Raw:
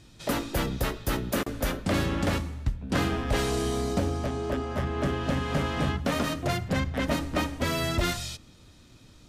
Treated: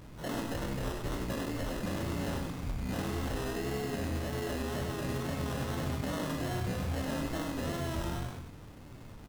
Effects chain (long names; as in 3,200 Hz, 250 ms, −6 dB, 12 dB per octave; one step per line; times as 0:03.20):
every bin's largest magnitude spread in time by 60 ms
Bessel low-pass filter 1,200 Hz, order 2
in parallel at −1 dB: downward compressor, threshold −37 dBFS, peak gain reduction 17.5 dB
on the sum: brickwall limiter −22.5 dBFS, peak gain reduction 11 dB
log-companded quantiser 4 bits
flanger 0.81 Hz, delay 6.2 ms, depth 3.5 ms, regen −67%
decimation without filtering 19×
tape wow and flutter 64 cents
on a send: single-tap delay 98 ms −5.5 dB
on the sum: level −1.5 dB